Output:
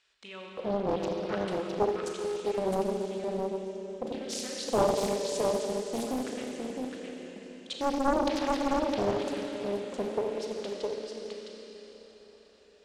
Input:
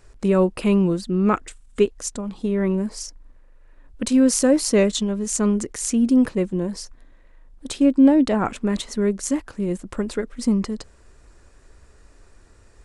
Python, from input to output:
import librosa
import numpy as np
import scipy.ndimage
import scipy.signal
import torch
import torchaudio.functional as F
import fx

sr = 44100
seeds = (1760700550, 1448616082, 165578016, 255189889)

p1 = scipy.signal.sosfilt(scipy.signal.bessel(2, 9200.0, 'lowpass', norm='mag', fs=sr, output='sos'), x)
p2 = fx.over_compress(p1, sr, threshold_db=-20.0, ratio=-1.0)
p3 = p1 + (p2 * 10.0 ** (-1.5 / 20.0))
p4 = fx.filter_lfo_bandpass(p3, sr, shape='square', hz=0.97, low_hz=530.0, high_hz=3300.0, q=2.9)
p5 = p4 + fx.echo_single(p4, sr, ms=661, db=-4.0, dry=0)
p6 = fx.rev_schroeder(p5, sr, rt60_s=4.0, comb_ms=28, drr_db=-1.5)
p7 = fx.doppler_dist(p6, sr, depth_ms=0.86)
y = p7 * 10.0 ** (-6.0 / 20.0)